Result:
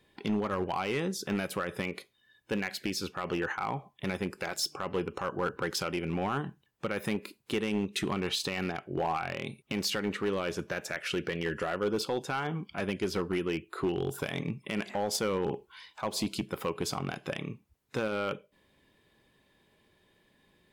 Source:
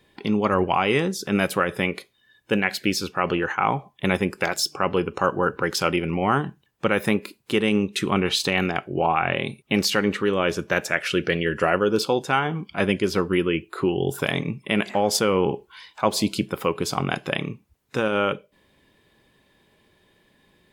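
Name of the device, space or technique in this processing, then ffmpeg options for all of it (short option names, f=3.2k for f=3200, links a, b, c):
limiter into clipper: -af "alimiter=limit=-12.5dB:level=0:latency=1:release=175,asoftclip=type=hard:threshold=-17.5dB,volume=-6dB"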